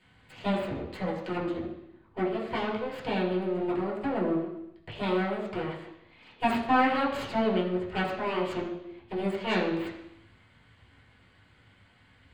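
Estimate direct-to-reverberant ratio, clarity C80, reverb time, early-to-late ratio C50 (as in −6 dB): −6.0 dB, 7.5 dB, 0.85 s, 5.5 dB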